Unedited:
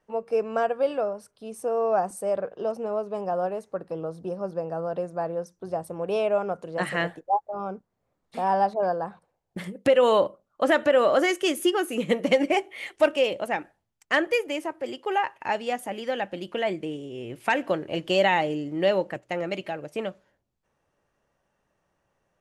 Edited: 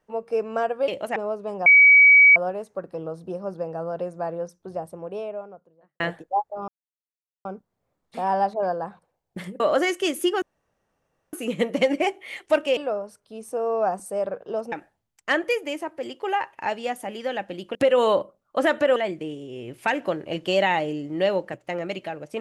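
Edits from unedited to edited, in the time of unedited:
0:00.88–0:02.83: swap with 0:13.27–0:13.55
0:03.33: insert tone 2,270 Hz −9 dBFS 0.70 s
0:05.35–0:06.97: fade out and dull
0:07.65: splice in silence 0.77 s
0:09.80–0:11.01: move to 0:16.58
0:11.83: splice in room tone 0.91 s

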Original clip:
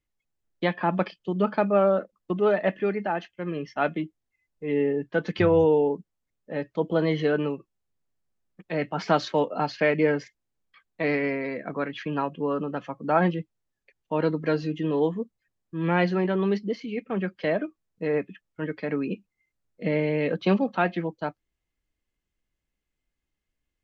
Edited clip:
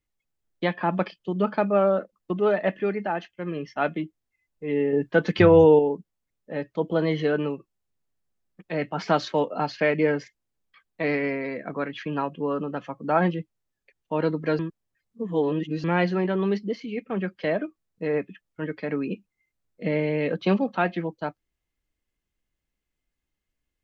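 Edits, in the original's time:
0:04.93–0:05.79: clip gain +5 dB
0:14.59–0:15.84: reverse

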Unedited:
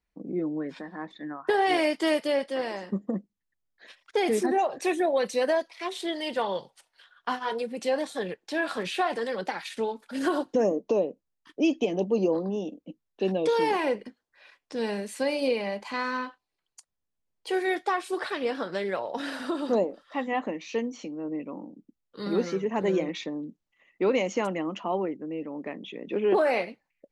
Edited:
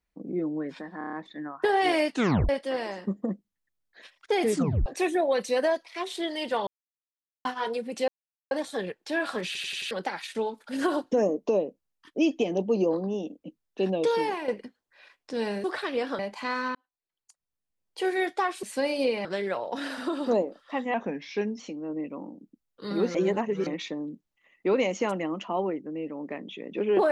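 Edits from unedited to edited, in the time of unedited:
0:00.98: stutter 0.03 s, 6 plays
0:01.96: tape stop 0.38 s
0:04.37: tape stop 0.34 s
0:06.52–0:07.30: silence
0:07.93: splice in silence 0.43 s
0:08.88: stutter in place 0.09 s, 5 plays
0:13.49–0:13.90: fade out, to −9.5 dB
0:15.06–0:15.68: swap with 0:18.12–0:18.67
0:16.24–0:17.51: fade in
0:20.36–0:20.95: play speed 90%
0:22.50–0:23.02: reverse

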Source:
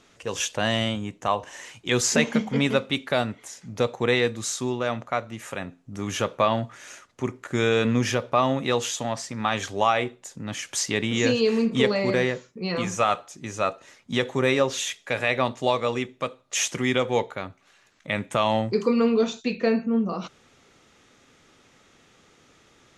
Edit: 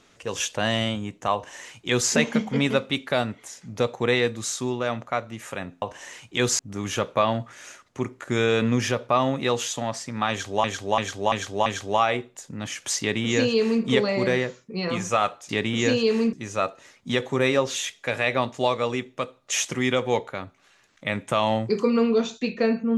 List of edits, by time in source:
0:01.34–0:02.11: duplicate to 0:05.82
0:09.53–0:09.87: repeat, 5 plays
0:10.87–0:11.71: duplicate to 0:13.36

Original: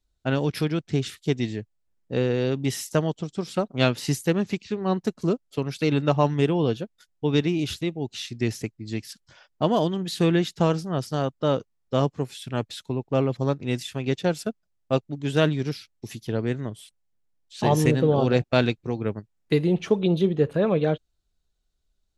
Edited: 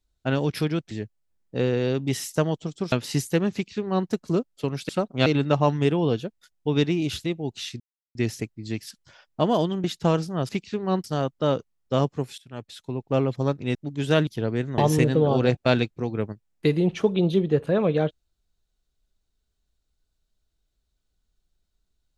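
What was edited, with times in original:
0:00.91–0:01.48: remove
0:03.49–0:03.86: move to 0:05.83
0:04.47–0:05.02: duplicate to 0:11.05
0:08.37: splice in silence 0.35 s
0:10.06–0:10.40: remove
0:12.39–0:13.16: fade in, from −19.5 dB
0:13.76–0:15.01: remove
0:15.53–0:16.18: remove
0:16.69–0:17.65: remove

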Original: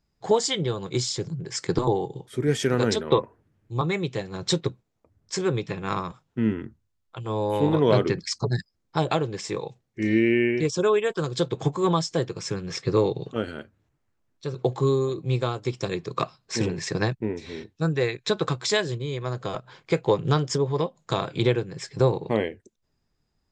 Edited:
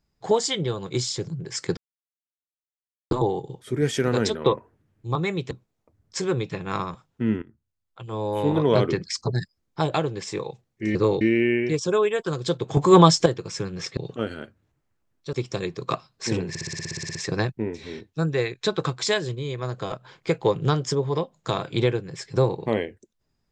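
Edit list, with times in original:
0:01.77: splice in silence 1.34 s
0:04.17–0:04.68: remove
0:06.59–0:07.96: fade in equal-power, from −17.5 dB
0:11.68–0:12.17: clip gain +9.5 dB
0:12.88–0:13.14: move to 0:10.12
0:14.50–0:15.62: remove
0:16.78: stutter 0.06 s, 12 plays

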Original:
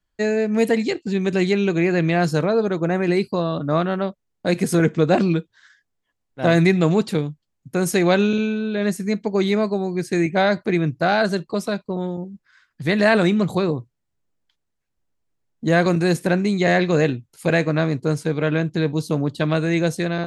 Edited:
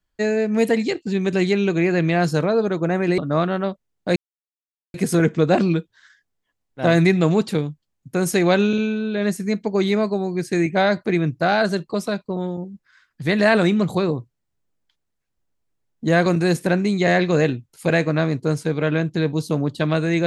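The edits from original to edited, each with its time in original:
0:03.18–0:03.56: remove
0:04.54: splice in silence 0.78 s

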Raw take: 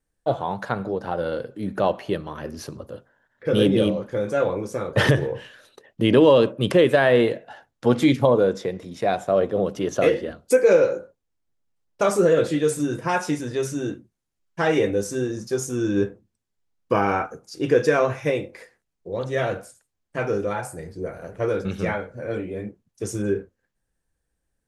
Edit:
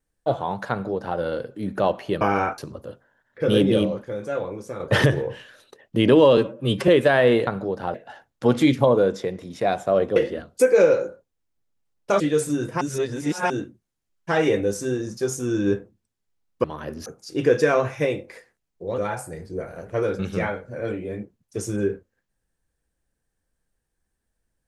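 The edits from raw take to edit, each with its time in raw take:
0:00.71–0:01.18: duplicate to 0:07.35
0:02.21–0:02.63: swap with 0:16.94–0:17.31
0:04.09–0:04.85: clip gain −5.5 dB
0:06.42–0:06.76: time-stretch 1.5×
0:09.57–0:10.07: remove
0:12.11–0:12.50: remove
0:13.11–0:13.80: reverse
0:19.23–0:20.44: remove

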